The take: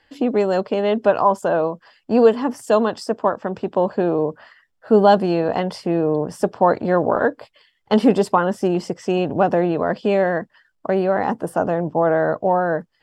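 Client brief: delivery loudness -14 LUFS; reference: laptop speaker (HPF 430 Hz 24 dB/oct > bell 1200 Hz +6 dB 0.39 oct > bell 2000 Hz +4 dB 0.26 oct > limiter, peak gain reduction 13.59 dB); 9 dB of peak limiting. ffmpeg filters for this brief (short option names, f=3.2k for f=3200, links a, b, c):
-af "alimiter=limit=-10.5dB:level=0:latency=1,highpass=f=430:w=0.5412,highpass=f=430:w=1.3066,equalizer=f=1.2k:t=o:w=0.39:g=6,equalizer=f=2k:t=o:w=0.26:g=4,volume=17dB,alimiter=limit=-4.5dB:level=0:latency=1"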